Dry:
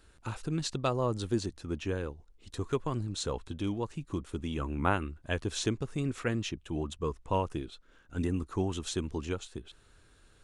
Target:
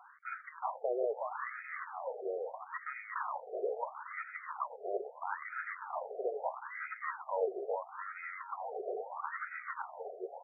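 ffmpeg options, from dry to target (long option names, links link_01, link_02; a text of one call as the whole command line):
ffmpeg -i in.wav -af "areverse,acompressor=threshold=-39dB:ratio=20,areverse,acrusher=samples=19:mix=1:aa=0.000001,asoftclip=type=tanh:threshold=-37dB,aecho=1:1:370|666|902.8|1092|1244:0.631|0.398|0.251|0.158|0.1,afftfilt=real='re*between(b*sr/1024,520*pow(1800/520,0.5+0.5*sin(2*PI*0.76*pts/sr))/1.41,520*pow(1800/520,0.5+0.5*sin(2*PI*0.76*pts/sr))*1.41)':imag='im*between(b*sr/1024,520*pow(1800/520,0.5+0.5*sin(2*PI*0.76*pts/sr))/1.41,520*pow(1800/520,0.5+0.5*sin(2*PI*0.76*pts/sr))*1.41)':win_size=1024:overlap=0.75,volume=16dB" out.wav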